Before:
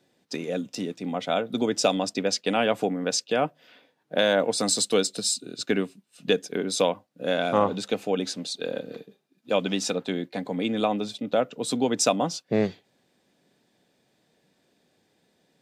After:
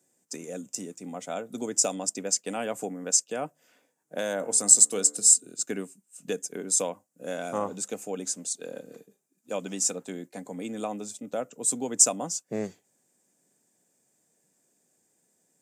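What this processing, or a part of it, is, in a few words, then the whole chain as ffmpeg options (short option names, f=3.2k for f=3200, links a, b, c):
budget condenser microphone: -filter_complex "[0:a]highpass=110,highshelf=f=5.4k:t=q:w=3:g=12,asettb=1/sr,asplit=3[a][b][c];[a]atrim=end=4.374[d];[b]atrim=start=4.37:end=5.5,asetpts=PTS-STARTPTS,afade=t=in:d=0.004:c=qsin,afade=t=out:st=1.126:d=0.004:c=qsin,bandreject=f=73.33:t=h:w=4,bandreject=f=146.66:t=h:w=4,bandreject=f=219.99:t=h:w=4,bandreject=f=293.32:t=h:w=4,bandreject=f=366.65:t=h:w=4,bandreject=f=439.98:t=h:w=4,bandreject=f=513.31:t=h:w=4,bandreject=f=586.64:t=h:w=4,bandreject=f=659.97:t=h:w=4,bandreject=f=733.3:t=h:w=4,bandreject=f=806.63:t=h:w=4,bandreject=f=879.96:t=h:w=4,bandreject=f=953.29:t=h:w=4,bandreject=f=1.02662k:t=h:w=4,bandreject=f=1.09995k:t=h:w=4,bandreject=f=1.17328k:t=h:w=4,bandreject=f=1.24661k:t=h:w=4,bandreject=f=1.31994k:t=h:w=4,bandreject=f=1.39327k:t=h:w=4,bandreject=f=1.4666k:t=h:w=4,bandreject=f=1.53993k:t=h:w=4,bandreject=f=1.61326k:t=h:w=4,bandreject=f=1.68659k:t=h:w=4,bandreject=f=1.75992k:t=h:w=4,bandreject=f=1.83325k:t=h:w=4,bandreject=f=1.90658k:t=h:w=4,bandreject=f=1.97991k:t=h:w=4,bandreject=f=2.05324k:t=h:w=4,bandreject=f=2.12657k:t=h:w=4[e];[c]atrim=start=5.496[f];[d][e]acrossfade=d=0.004:c1=hsin:c2=qsin[g];[g][f]acrossfade=d=0.004:c1=qsin:c2=hsin,volume=-8dB"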